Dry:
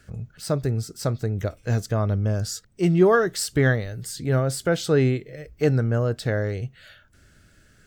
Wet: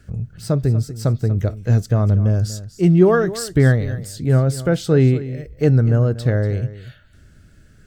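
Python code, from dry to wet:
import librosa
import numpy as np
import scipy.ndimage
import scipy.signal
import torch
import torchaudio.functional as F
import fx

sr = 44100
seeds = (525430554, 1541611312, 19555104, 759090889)

y = fx.low_shelf(x, sr, hz=360.0, db=10.0)
y = y + 10.0 ** (-15.0 / 20.0) * np.pad(y, (int(240 * sr / 1000.0), 0))[:len(y)]
y = y * 10.0 ** (-1.0 / 20.0)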